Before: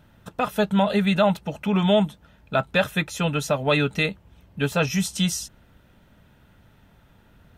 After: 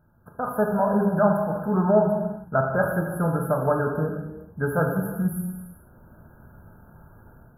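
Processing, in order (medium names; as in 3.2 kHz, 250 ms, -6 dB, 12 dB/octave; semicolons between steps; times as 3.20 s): level rider gain up to 12.5 dB; brick-wall FIR band-stop 1.7–10 kHz; gated-style reverb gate 470 ms falling, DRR 1 dB; trim -8.5 dB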